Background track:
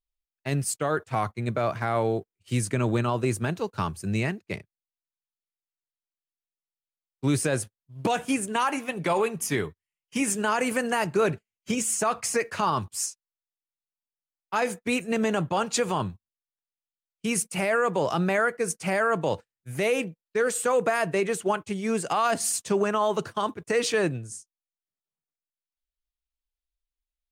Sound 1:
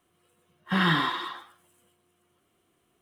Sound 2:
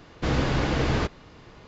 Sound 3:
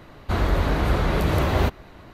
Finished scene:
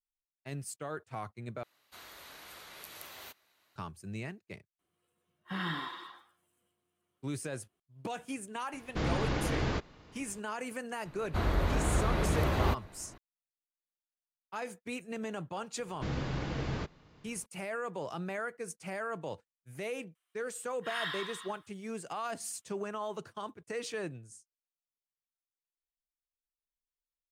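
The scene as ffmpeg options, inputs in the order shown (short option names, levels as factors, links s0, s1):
-filter_complex "[3:a]asplit=2[s0][s1];[1:a]asplit=2[s2][s3];[2:a]asplit=2[s4][s5];[0:a]volume=0.211[s6];[s0]aderivative[s7];[s5]equalizer=f=150:t=o:w=0.68:g=5[s8];[s3]highpass=1500[s9];[s6]asplit=2[s10][s11];[s10]atrim=end=1.634[s12];[s7]atrim=end=2.13,asetpts=PTS-STARTPTS,volume=0.355[s13];[s11]atrim=start=3.756[s14];[s2]atrim=end=3.01,asetpts=PTS-STARTPTS,volume=0.237,afade=t=in:d=0.004:c=hsin,afade=t=out:st=3.006:d=0.004:c=hsin,adelay=4790[s15];[s4]atrim=end=1.67,asetpts=PTS-STARTPTS,volume=0.422,afade=t=in:d=0.004:c=hsin,afade=t=out:st=1.666:d=0.004:c=hsin,adelay=8730[s16];[s1]atrim=end=2.13,asetpts=PTS-STARTPTS,volume=0.398,afade=t=in:d=0.004:c=hsin,afade=t=out:st=2.126:d=0.004:c=hsin,adelay=11050[s17];[s8]atrim=end=1.67,asetpts=PTS-STARTPTS,volume=0.237,afade=t=in:d=0.004:c=hsin,afade=t=out:st=1.666:d=0.004:c=hsin,adelay=15790[s18];[s9]atrim=end=3.01,asetpts=PTS-STARTPTS,volume=0.355,afade=t=in:d=0.004:c=hsin,afade=t=out:st=3.006:d=0.004:c=hsin,adelay=20150[s19];[s12][s13]acrossfade=d=0.004:c1=hsin:c2=hsin[s20];[s20][s14]acrossfade=d=0.004:c1=hsin:c2=hsin[s21];[s21][s15][s16][s17][s18][s19]amix=inputs=6:normalize=0"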